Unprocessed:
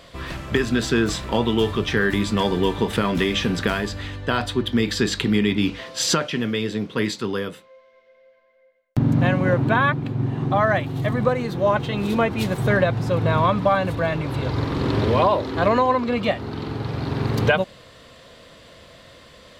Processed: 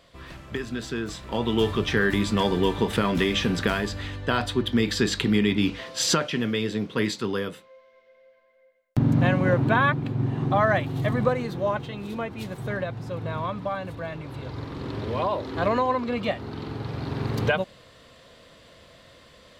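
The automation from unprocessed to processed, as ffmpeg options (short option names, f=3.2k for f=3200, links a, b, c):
-af "volume=4dB,afade=t=in:st=1.21:d=0.42:silence=0.375837,afade=t=out:st=11.19:d=0.8:silence=0.354813,afade=t=in:st=15.04:d=0.55:silence=0.501187"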